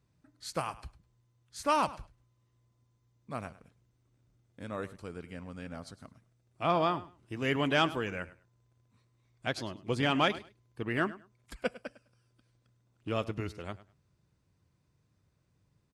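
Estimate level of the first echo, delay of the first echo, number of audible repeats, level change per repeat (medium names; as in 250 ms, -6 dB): -17.5 dB, 103 ms, 2, -14.5 dB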